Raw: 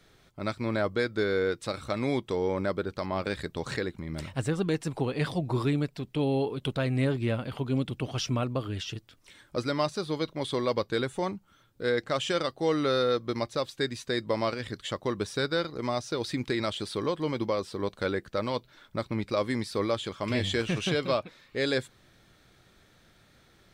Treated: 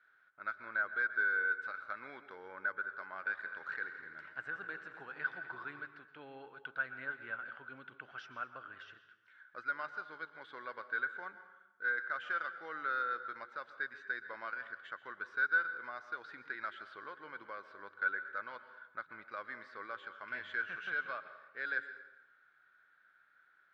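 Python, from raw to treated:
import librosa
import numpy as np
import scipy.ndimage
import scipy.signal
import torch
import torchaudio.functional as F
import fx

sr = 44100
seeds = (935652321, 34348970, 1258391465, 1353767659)

y = fx.bandpass_q(x, sr, hz=1500.0, q=14.0)
y = fx.air_absorb(y, sr, metres=93.0)
y = fx.echo_heads(y, sr, ms=84, heads='all three', feedback_pct=47, wet_db=-15.5, at=(3.43, 5.82), fade=0.02)
y = fx.rev_plate(y, sr, seeds[0], rt60_s=0.96, hf_ratio=0.75, predelay_ms=105, drr_db=11.5)
y = y * librosa.db_to_amplitude(8.5)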